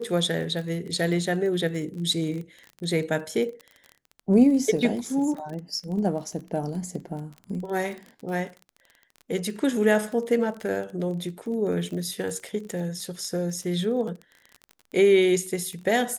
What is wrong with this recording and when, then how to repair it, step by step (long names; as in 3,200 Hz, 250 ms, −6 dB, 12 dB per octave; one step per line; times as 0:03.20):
surface crackle 28 per second −33 dBFS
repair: click removal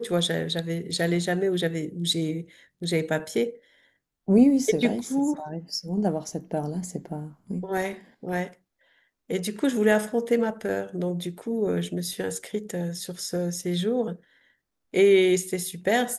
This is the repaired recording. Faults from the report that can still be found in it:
none of them is left